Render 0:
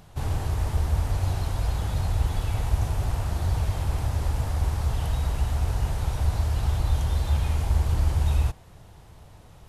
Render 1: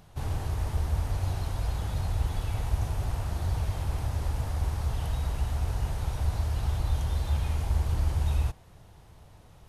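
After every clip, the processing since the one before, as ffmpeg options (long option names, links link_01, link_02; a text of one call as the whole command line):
ffmpeg -i in.wav -af "bandreject=frequency=7500:width=24,volume=-4dB" out.wav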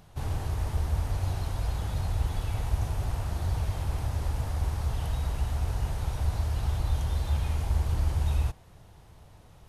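ffmpeg -i in.wav -af anull out.wav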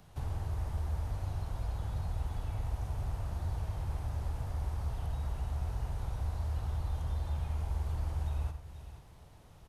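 ffmpeg -i in.wav -filter_complex "[0:a]aecho=1:1:51|92|479:0.266|0.2|0.119,acrossover=split=170|560|1400[link_01][link_02][link_03][link_04];[link_01]acompressor=threshold=-28dB:ratio=4[link_05];[link_02]acompressor=threshold=-50dB:ratio=4[link_06];[link_03]acompressor=threshold=-47dB:ratio=4[link_07];[link_04]acompressor=threshold=-56dB:ratio=4[link_08];[link_05][link_06][link_07][link_08]amix=inputs=4:normalize=0,volume=-3.5dB" out.wav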